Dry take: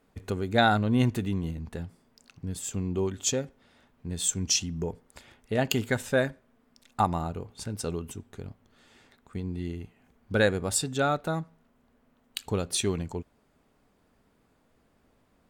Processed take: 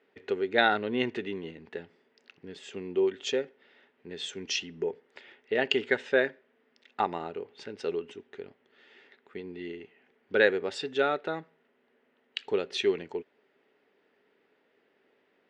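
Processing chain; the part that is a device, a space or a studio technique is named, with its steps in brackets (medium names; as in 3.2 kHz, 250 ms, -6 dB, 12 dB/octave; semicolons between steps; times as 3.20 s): phone earpiece (cabinet simulation 380–4400 Hz, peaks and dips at 400 Hz +9 dB, 690 Hz -4 dB, 1.1 kHz -7 dB, 1.9 kHz +7 dB, 2.8 kHz +4 dB, 4.3 kHz -3 dB)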